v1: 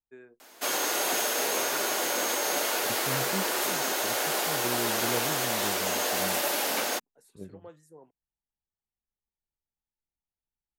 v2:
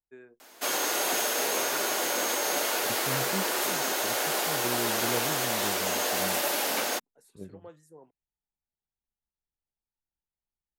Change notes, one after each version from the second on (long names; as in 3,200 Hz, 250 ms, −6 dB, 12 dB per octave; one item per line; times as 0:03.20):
nothing changed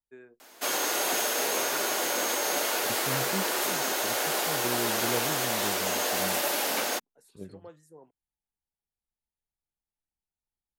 second voice: remove high-frequency loss of the air 340 metres